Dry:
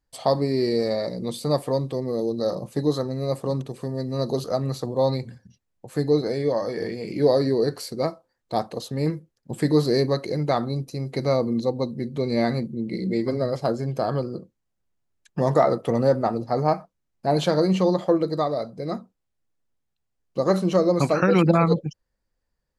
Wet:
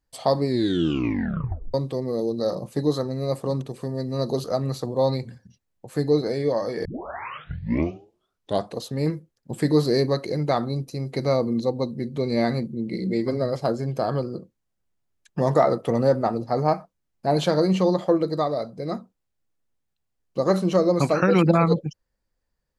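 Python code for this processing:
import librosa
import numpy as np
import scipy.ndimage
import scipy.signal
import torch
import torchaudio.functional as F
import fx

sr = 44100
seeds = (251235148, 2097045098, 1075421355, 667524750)

y = fx.edit(x, sr, fx.tape_stop(start_s=0.46, length_s=1.28),
    fx.tape_start(start_s=6.85, length_s=1.92), tone=tone)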